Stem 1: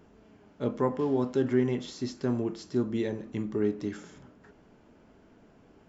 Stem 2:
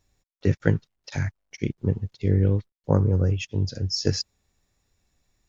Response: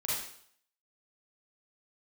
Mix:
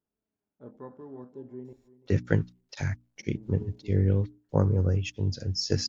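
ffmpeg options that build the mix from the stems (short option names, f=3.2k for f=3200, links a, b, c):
-filter_complex "[0:a]afwtdn=0.0141,volume=-16.5dB,asplit=3[a][b][c];[a]atrim=end=1.73,asetpts=PTS-STARTPTS,afade=t=out:st=1.726:d=0.004:c=hsin[d];[b]atrim=start=1.73:end=3.19,asetpts=PTS-STARTPTS,volume=0[e];[c]atrim=start=3.19,asetpts=PTS-STARTPTS,afade=t=in:d=0.004:c=hsin[f];[d][e][f]concat=n=3:v=0:a=1,asplit=2[g][h];[h]volume=-17.5dB[i];[1:a]bandreject=f=60:t=h:w=6,bandreject=f=120:t=h:w=6,bandreject=f=180:t=h:w=6,bandreject=f=240:t=h:w=6,bandreject=f=300:t=h:w=6,adelay=1650,volume=-3dB[j];[i]aecho=0:1:338|676|1014|1352:1|0.29|0.0841|0.0244[k];[g][j][k]amix=inputs=3:normalize=0"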